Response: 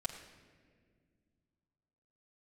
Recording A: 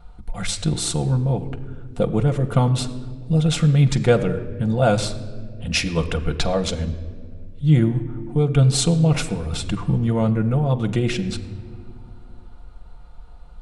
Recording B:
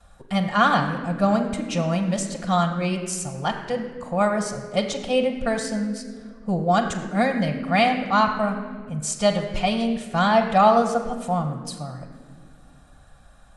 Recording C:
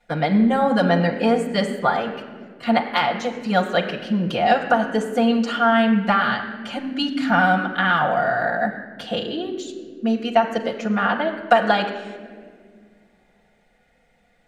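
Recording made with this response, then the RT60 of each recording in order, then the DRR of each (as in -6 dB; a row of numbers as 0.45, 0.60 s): C; not exponential, not exponential, not exponential; 4.5, -10.5, -3.5 dB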